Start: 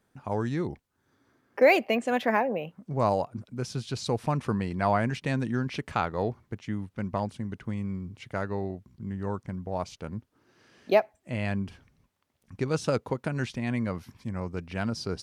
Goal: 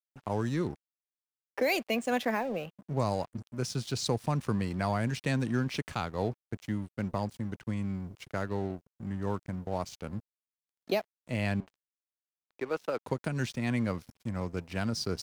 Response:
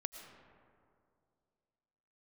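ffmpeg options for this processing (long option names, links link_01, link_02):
-filter_complex "[0:a]asettb=1/sr,asplit=3[link_01][link_02][link_03];[link_01]atrim=end=11.604[link_04];[link_02]atrim=start=11.6:end=13.01,asetpts=PTS-STARTPTS,afade=type=in:duration=0.004:curve=qsin,afade=type=out:start_time=1.406:duration=0.004:curve=qsin,acrossover=split=310 2900:gain=0.0631 1 0.1[link_05][link_06][link_07];[link_05][link_06][link_07]amix=inputs=3:normalize=0[link_08];[link_03]atrim=start=13.006[link_09];[link_04][link_08]acrossfade=duration=0.004:curve1=hsin:curve2=qsin[link_10];[link_10][link_09]acrossfade=duration=0.004:curve1=qsin:curve2=hsin,acrossover=split=210|3900[link_11][link_12][link_13];[link_12]alimiter=limit=-20.5dB:level=0:latency=1:release=366[link_14];[link_13]acontrast=38[link_15];[link_11][link_14][link_15]amix=inputs=3:normalize=0,aeval=exprs='sgn(val(0))*max(abs(val(0))-0.00376,0)':channel_layout=same"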